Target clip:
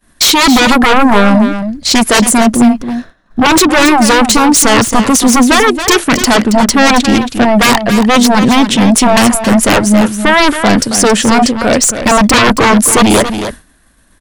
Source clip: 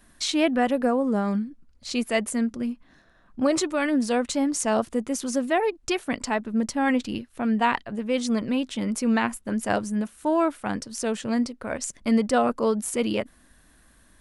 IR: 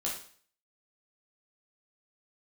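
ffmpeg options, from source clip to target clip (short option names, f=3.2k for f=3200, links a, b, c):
-af "aeval=exprs='0.376*sin(PI/2*6.31*val(0)/0.376)':c=same,aecho=1:1:274:0.335,agate=range=-33dB:threshold=-24dB:ratio=3:detection=peak,volume=4.5dB"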